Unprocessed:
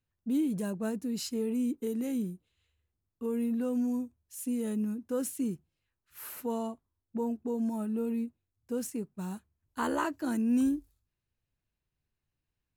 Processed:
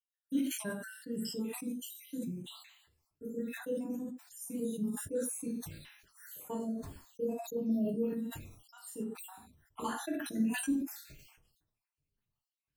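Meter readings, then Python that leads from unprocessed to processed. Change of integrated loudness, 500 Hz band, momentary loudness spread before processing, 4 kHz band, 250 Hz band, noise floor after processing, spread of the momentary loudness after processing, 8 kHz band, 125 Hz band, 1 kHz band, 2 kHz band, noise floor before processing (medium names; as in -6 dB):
-4.5 dB, -3.0 dB, 11 LU, +0.5 dB, -5.0 dB, under -85 dBFS, 16 LU, +1.0 dB, -3.0 dB, -6.5 dB, -0.5 dB, under -85 dBFS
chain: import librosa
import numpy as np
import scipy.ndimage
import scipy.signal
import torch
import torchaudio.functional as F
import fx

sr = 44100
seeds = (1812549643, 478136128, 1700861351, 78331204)

y = fx.spec_dropout(x, sr, seeds[0], share_pct=73)
y = fx.rev_gated(y, sr, seeds[1], gate_ms=150, shape='falling', drr_db=-3.0)
y = fx.sustainer(y, sr, db_per_s=58.0)
y = y * 10.0 ** (-5.0 / 20.0)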